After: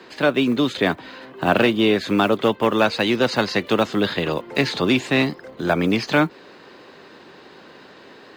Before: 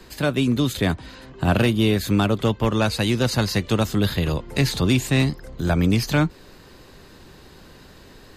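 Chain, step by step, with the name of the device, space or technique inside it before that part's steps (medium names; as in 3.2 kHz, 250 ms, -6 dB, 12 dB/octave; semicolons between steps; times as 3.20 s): early digital voice recorder (band-pass 290–3500 Hz; block-companded coder 7-bit); trim +5.5 dB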